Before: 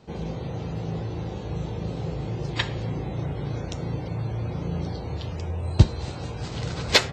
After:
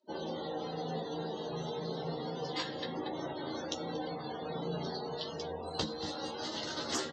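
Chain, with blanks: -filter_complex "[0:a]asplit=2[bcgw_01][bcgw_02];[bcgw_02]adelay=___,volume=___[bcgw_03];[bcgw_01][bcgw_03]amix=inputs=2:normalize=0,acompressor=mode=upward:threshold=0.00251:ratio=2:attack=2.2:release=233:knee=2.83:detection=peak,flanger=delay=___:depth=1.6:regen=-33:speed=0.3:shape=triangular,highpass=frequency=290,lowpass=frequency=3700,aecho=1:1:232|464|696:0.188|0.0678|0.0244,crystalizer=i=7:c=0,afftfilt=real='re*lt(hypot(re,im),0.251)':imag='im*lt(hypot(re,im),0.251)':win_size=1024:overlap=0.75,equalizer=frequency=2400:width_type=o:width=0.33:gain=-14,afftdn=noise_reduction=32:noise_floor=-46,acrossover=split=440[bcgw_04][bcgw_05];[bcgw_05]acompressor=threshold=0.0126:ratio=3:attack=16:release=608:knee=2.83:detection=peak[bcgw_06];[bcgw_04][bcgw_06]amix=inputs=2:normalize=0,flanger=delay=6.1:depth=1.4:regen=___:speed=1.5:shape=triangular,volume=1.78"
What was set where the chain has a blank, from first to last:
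13, 0.596, 3.2, -67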